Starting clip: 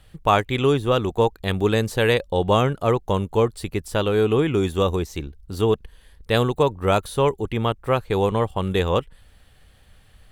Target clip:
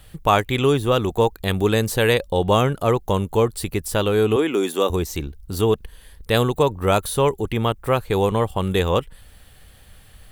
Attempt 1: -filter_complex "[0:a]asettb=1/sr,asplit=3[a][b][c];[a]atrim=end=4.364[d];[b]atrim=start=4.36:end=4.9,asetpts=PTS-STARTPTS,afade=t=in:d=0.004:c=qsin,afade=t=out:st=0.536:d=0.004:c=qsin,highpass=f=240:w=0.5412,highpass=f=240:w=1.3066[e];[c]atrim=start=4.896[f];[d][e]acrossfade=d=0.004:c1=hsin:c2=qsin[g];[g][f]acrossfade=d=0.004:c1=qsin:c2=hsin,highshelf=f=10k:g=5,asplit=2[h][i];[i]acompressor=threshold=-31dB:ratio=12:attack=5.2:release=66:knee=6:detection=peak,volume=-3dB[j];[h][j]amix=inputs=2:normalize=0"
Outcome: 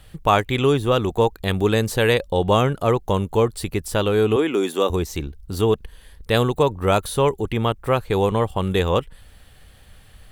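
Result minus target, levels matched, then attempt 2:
8000 Hz band -2.5 dB
-filter_complex "[0:a]asettb=1/sr,asplit=3[a][b][c];[a]atrim=end=4.364[d];[b]atrim=start=4.36:end=4.9,asetpts=PTS-STARTPTS,afade=t=in:d=0.004:c=qsin,afade=t=out:st=0.536:d=0.004:c=qsin,highpass=f=240:w=0.5412,highpass=f=240:w=1.3066[e];[c]atrim=start=4.896[f];[d][e]acrossfade=d=0.004:c1=hsin:c2=qsin[g];[g][f]acrossfade=d=0.004:c1=qsin:c2=hsin,highshelf=f=10k:g=12.5,asplit=2[h][i];[i]acompressor=threshold=-31dB:ratio=12:attack=5.2:release=66:knee=6:detection=peak,volume=-3dB[j];[h][j]amix=inputs=2:normalize=0"

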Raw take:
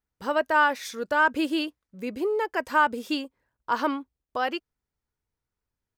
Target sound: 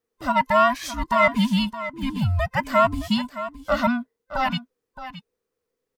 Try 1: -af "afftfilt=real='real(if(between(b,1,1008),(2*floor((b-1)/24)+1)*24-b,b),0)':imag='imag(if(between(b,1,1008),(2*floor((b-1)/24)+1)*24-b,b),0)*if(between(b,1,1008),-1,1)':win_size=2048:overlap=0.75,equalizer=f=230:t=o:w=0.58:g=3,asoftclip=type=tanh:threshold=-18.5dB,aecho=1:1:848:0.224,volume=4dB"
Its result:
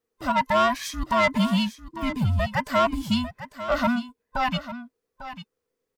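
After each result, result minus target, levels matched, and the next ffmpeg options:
soft clip: distortion +15 dB; echo 0.23 s late
-af "afftfilt=real='real(if(between(b,1,1008),(2*floor((b-1)/24)+1)*24-b,b),0)':imag='imag(if(between(b,1,1008),(2*floor((b-1)/24)+1)*24-b,b),0)*if(between(b,1,1008),-1,1)':win_size=2048:overlap=0.75,equalizer=f=230:t=o:w=0.58:g=3,asoftclip=type=tanh:threshold=-8dB,aecho=1:1:848:0.224,volume=4dB"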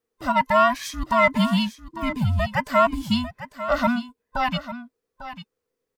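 echo 0.23 s late
-af "afftfilt=real='real(if(between(b,1,1008),(2*floor((b-1)/24)+1)*24-b,b),0)':imag='imag(if(between(b,1,1008),(2*floor((b-1)/24)+1)*24-b,b),0)*if(between(b,1,1008),-1,1)':win_size=2048:overlap=0.75,equalizer=f=230:t=o:w=0.58:g=3,asoftclip=type=tanh:threshold=-8dB,aecho=1:1:618:0.224,volume=4dB"

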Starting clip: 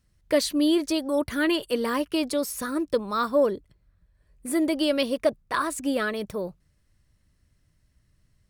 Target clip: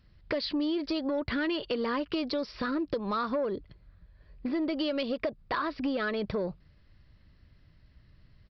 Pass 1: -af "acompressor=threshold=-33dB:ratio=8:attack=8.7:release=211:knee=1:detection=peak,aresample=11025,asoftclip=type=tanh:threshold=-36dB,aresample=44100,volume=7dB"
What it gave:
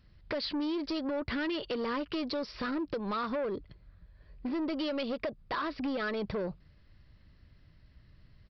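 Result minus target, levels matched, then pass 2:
soft clip: distortion +8 dB
-af "acompressor=threshold=-33dB:ratio=8:attack=8.7:release=211:knee=1:detection=peak,aresample=11025,asoftclip=type=tanh:threshold=-29dB,aresample=44100,volume=7dB"

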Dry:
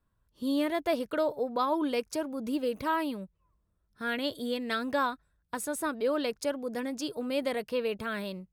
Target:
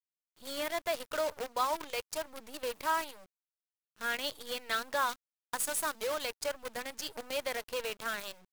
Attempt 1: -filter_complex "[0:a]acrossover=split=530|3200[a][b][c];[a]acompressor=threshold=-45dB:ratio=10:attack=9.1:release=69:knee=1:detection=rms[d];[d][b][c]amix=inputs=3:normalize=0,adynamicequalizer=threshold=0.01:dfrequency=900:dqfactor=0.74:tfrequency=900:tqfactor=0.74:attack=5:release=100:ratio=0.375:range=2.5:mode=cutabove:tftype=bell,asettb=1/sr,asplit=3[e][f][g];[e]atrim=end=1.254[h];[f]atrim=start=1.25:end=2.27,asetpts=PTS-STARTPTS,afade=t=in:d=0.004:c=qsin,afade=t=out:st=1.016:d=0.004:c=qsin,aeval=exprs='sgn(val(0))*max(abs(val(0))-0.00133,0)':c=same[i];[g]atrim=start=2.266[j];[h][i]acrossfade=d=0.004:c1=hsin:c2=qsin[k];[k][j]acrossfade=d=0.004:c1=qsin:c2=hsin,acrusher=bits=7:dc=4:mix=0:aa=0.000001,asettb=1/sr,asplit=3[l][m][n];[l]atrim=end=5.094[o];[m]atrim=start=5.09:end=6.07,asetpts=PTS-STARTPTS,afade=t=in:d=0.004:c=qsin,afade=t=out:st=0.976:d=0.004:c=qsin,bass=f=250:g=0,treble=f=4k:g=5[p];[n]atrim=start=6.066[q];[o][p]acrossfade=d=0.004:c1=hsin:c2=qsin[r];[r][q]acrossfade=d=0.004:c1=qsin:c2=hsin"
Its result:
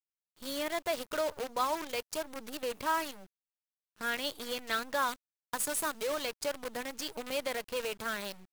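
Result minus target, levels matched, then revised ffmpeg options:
compressor: peak gain reduction -9 dB
-filter_complex "[0:a]acrossover=split=530|3200[a][b][c];[a]acompressor=threshold=-55dB:ratio=10:attack=9.1:release=69:knee=1:detection=rms[d];[d][b][c]amix=inputs=3:normalize=0,adynamicequalizer=threshold=0.01:dfrequency=900:dqfactor=0.74:tfrequency=900:tqfactor=0.74:attack=5:release=100:ratio=0.375:range=2.5:mode=cutabove:tftype=bell,asettb=1/sr,asplit=3[e][f][g];[e]atrim=end=1.254[h];[f]atrim=start=1.25:end=2.27,asetpts=PTS-STARTPTS,afade=t=in:d=0.004:c=qsin,afade=t=out:st=1.016:d=0.004:c=qsin,aeval=exprs='sgn(val(0))*max(abs(val(0))-0.00133,0)':c=same[i];[g]atrim=start=2.266[j];[h][i]acrossfade=d=0.004:c1=hsin:c2=qsin[k];[k][j]acrossfade=d=0.004:c1=qsin:c2=hsin,acrusher=bits=7:dc=4:mix=0:aa=0.000001,asettb=1/sr,asplit=3[l][m][n];[l]atrim=end=5.094[o];[m]atrim=start=5.09:end=6.07,asetpts=PTS-STARTPTS,afade=t=in:d=0.004:c=qsin,afade=t=out:st=0.976:d=0.004:c=qsin,bass=f=250:g=0,treble=f=4k:g=5[p];[n]atrim=start=6.066[q];[o][p]acrossfade=d=0.004:c1=hsin:c2=qsin[r];[r][q]acrossfade=d=0.004:c1=qsin:c2=hsin"

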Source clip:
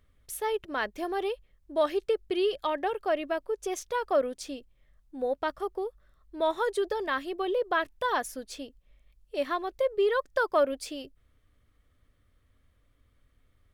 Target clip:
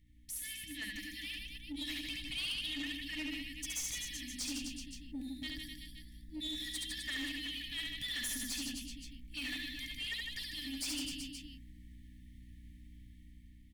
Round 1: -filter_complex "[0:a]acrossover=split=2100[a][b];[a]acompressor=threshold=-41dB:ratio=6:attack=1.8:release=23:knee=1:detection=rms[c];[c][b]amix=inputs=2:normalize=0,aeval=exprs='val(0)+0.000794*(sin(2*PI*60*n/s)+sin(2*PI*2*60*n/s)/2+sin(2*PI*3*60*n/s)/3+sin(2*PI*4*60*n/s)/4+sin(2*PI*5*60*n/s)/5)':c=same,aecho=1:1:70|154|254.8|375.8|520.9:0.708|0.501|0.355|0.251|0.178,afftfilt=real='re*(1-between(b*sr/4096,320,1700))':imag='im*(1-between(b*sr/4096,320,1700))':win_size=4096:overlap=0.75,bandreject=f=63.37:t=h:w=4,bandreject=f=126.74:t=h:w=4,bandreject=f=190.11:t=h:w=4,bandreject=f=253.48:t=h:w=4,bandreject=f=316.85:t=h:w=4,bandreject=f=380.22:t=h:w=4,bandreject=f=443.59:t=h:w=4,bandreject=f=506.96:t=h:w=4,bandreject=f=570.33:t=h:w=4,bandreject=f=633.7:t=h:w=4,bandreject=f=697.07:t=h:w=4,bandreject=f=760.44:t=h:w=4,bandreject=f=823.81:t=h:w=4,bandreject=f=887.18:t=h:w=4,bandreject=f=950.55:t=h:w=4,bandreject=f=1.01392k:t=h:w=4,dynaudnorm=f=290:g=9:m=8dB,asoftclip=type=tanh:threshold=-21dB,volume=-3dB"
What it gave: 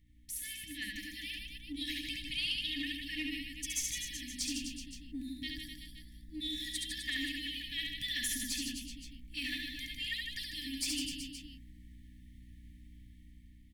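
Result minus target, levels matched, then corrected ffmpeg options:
soft clip: distortion -12 dB
-filter_complex "[0:a]acrossover=split=2100[a][b];[a]acompressor=threshold=-41dB:ratio=6:attack=1.8:release=23:knee=1:detection=rms[c];[c][b]amix=inputs=2:normalize=0,aeval=exprs='val(0)+0.000794*(sin(2*PI*60*n/s)+sin(2*PI*2*60*n/s)/2+sin(2*PI*3*60*n/s)/3+sin(2*PI*4*60*n/s)/4+sin(2*PI*5*60*n/s)/5)':c=same,aecho=1:1:70|154|254.8|375.8|520.9:0.708|0.501|0.355|0.251|0.178,afftfilt=real='re*(1-between(b*sr/4096,320,1700))':imag='im*(1-between(b*sr/4096,320,1700))':win_size=4096:overlap=0.75,bandreject=f=63.37:t=h:w=4,bandreject=f=126.74:t=h:w=4,bandreject=f=190.11:t=h:w=4,bandreject=f=253.48:t=h:w=4,bandreject=f=316.85:t=h:w=4,bandreject=f=380.22:t=h:w=4,bandreject=f=443.59:t=h:w=4,bandreject=f=506.96:t=h:w=4,bandreject=f=570.33:t=h:w=4,bandreject=f=633.7:t=h:w=4,bandreject=f=697.07:t=h:w=4,bandreject=f=760.44:t=h:w=4,bandreject=f=823.81:t=h:w=4,bandreject=f=887.18:t=h:w=4,bandreject=f=950.55:t=h:w=4,bandreject=f=1.01392k:t=h:w=4,dynaudnorm=f=290:g=9:m=8dB,asoftclip=type=tanh:threshold=-30.5dB,volume=-3dB"

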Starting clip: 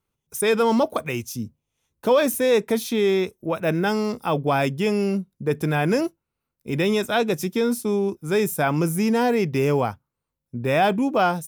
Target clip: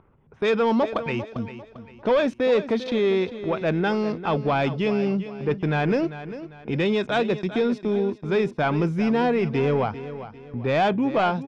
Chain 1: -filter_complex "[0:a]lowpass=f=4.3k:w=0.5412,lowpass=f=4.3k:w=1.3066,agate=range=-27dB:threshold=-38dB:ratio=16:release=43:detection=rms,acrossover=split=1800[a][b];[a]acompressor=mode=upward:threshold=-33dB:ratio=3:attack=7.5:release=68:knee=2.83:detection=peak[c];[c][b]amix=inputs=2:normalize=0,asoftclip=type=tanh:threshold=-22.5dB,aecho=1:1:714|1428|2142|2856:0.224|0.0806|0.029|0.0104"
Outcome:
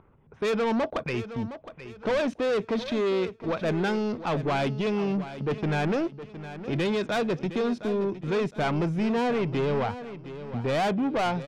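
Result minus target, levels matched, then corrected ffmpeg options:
echo 0.317 s late; soft clip: distortion +10 dB
-filter_complex "[0:a]lowpass=f=4.3k:w=0.5412,lowpass=f=4.3k:w=1.3066,agate=range=-27dB:threshold=-38dB:ratio=16:release=43:detection=rms,acrossover=split=1800[a][b];[a]acompressor=mode=upward:threshold=-33dB:ratio=3:attack=7.5:release=68:knee=2.83:detection=peak[c];[c][b]amix=inputs=2:normalize=0,asoftclip=type=tanh:threshold=-13.5dB,aecho=1:1:397|794|1191|1588:0.224|0.0806|0.029|0.0104"

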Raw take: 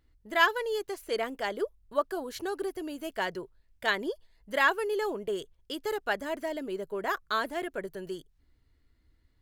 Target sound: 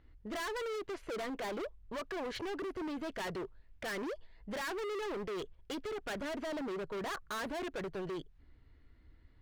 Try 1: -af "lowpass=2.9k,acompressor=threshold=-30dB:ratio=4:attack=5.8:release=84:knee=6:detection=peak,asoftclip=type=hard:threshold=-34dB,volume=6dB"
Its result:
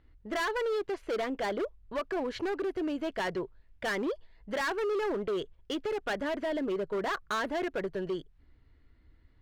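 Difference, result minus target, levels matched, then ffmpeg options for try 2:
hard clip: distortion -5 dB
-af "lowpass=2.9k,acompressor=threshold=-30dB:ratio=4:attack=5.8:release=84:knee=6:detection=peak,asoftclip=type=hard:threshold=-43dB,volume=6dB"

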